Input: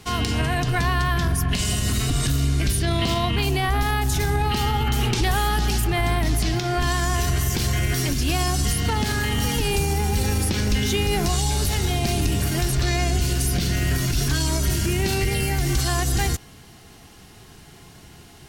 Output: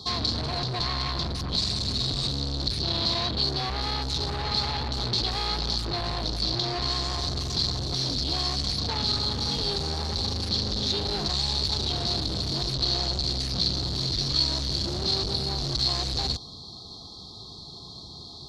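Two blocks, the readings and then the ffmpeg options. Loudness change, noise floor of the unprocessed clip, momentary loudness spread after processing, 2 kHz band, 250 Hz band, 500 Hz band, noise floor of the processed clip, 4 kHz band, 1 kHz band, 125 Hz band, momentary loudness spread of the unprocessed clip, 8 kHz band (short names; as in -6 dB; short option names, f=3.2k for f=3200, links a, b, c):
-4.0 dB, -47 dBFS, 5 LU, -13.0 dB, -8.0 dB, -7.5 dB, -43 dBFS, +4.0 dB, -7.5 dB, -9.5 dB, 1 LU, -11.5 dB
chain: -af "afftfilt=real='re*(1-between(b*sr/4096,1300,3200))':imag='im*(1-between(b*sr/4096,1300,3200))':win_size=4096:overlap=0.75,highpass=43,volume=29.5dB,asoftclip=hard,volume=-29.5dB,lowpass=f=4.3k:t=q:w=8.1"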